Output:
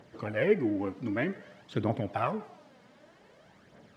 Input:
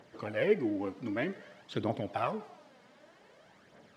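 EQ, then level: dynamic bell 4.1 kHz, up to -4 dB, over -55 dBFS, Q 1.1; bass shelf 220 Hz +8 dB; dynamic bell 1.7 kHz, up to +4 dB, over -45 dBFS, Q 0.84; 0.0 dB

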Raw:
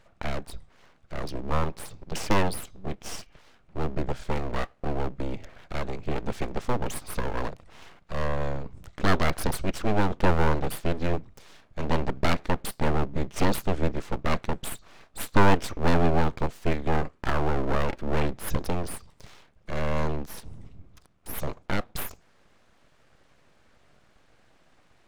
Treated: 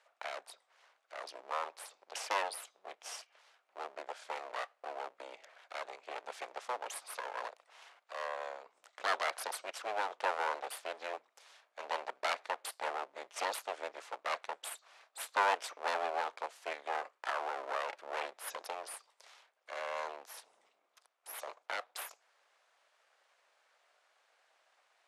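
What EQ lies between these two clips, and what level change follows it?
high-pass 590 Hz 24 dB/octave; steep low-pass 12 kHz 36 dB/octave; -6.0 dB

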